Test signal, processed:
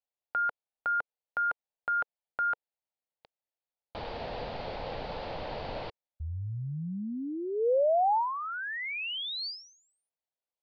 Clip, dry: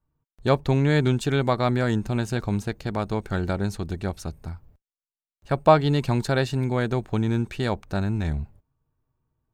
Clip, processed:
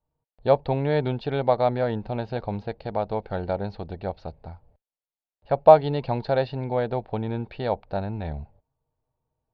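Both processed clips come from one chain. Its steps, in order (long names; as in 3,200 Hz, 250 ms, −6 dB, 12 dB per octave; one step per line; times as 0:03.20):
Chebyshev low-pass filter 4,600 Hz, order 5
flat-topped bell 650 Hz +11 dB 1.2 octaves
level −6 dB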